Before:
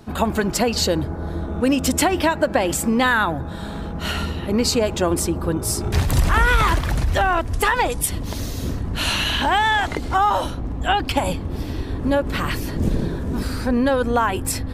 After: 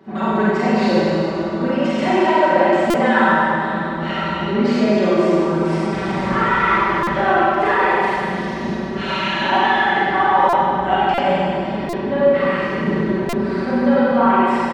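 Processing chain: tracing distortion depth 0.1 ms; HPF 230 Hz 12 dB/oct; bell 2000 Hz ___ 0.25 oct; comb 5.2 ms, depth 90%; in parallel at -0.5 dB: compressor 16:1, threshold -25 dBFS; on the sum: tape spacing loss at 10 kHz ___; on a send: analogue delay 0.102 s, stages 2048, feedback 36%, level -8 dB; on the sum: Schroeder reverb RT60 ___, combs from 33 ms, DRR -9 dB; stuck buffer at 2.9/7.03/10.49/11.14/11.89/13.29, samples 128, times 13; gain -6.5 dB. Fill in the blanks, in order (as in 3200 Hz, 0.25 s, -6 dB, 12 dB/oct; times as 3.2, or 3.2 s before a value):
+5.5 dB, 34 dB, 2.5 s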